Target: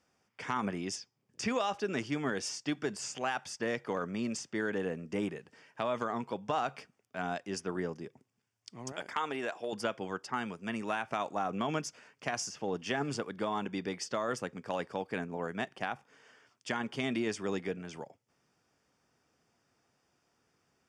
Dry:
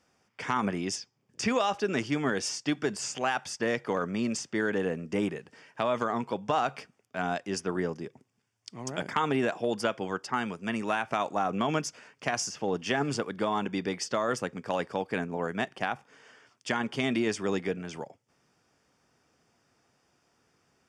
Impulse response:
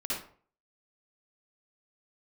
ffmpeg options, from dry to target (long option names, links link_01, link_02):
-filter_complex "[0:a]asettb=1/sr,asplit=3[link_01][link_02][link_03];[link_01]atrim=end=8.924[link_04];[link_02]atrim=start=8.92:end=9.73,asetpts=PTS-STARTPTS,afade=type=in:duration=0.004:curve=qsin,afade=type=out:start_time=0.806:duration=0.004:curve=qsin,equalizer=frequency=140:width_type=o:width=2.1:gain=-13.5[link_05];[link_03]atrim=start=9.726[link_06];[link_04][link_05]acrossfade=duration=0.004:curve1=hsin:curve2=qsin[link_07];[link_07][link_06]acrossfade=duration=0.004:curve1=qsin:curve2=hsin,volume=-5dB"